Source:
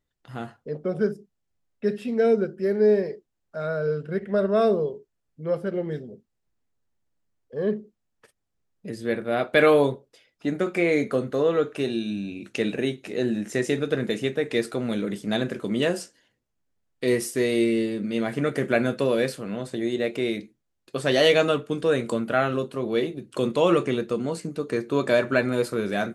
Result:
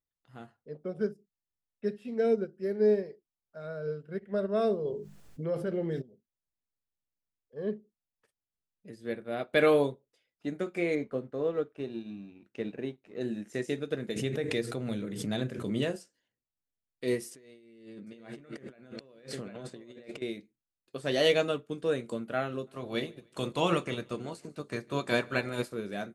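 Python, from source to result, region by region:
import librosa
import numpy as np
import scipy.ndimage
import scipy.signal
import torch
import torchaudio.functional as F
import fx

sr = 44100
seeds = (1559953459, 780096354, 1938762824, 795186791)

y = fx.chain(x, sr, fx.hum_notches(base_hz=50, count=5),
    fx.env_flatten(amount_pct=70), at=(4.85, 6.02))
y = fx.chain(y, sr, fx.law_mismatch(coded='A'),
    fx.lowpass(hz=1700.0, slope=6), at=(10.95, 13.21))
y = fx.chain(y, sr, fx.peak_eq(hz=110.0, db=9.5, octaves=0.79),
    fx.hum_notches(base_hz=60, count=8),
    fx.pre_swell(db_per_s=32.0), at=(14.16, 15.96))
y = fx.chain(y, sr, fx.lowpass(hz=8100.0, slope=12),
    fx.echo_single(ms=754, db=-14.0),
    fx.over_compress(threshold_db=-35.0, ratio=-1.0), at=(17.31, 20.22))
y = fx.spec_clip(y, sr, under_db=13, at=(22.66, 25.71), fade=0.02)
y = fx.echo_feedback(y, sr, ms=148, feedback_pct=46, wet_db=-21.5, at=(22.66, 25.71), fade=0.02)
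y = fx.dynamic_eq(y, sr, hz=1300.0, q=0.8, threshold_db=-34.0, ratio=4.0, max_db=-3)
y = fx.upward_expand(y, sr, threshold_db=-40.0, expansion=1.5)
y = y * 10.0 ** (-4.5 / 20.0)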